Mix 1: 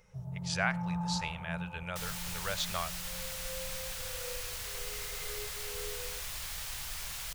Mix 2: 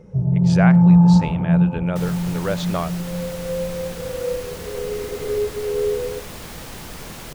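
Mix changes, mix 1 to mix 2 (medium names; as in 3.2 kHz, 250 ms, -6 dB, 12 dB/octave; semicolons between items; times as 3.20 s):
first sound: add tilt EQ -2.5 dB/octave; master: remove amplifier tone stack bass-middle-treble 10-0-10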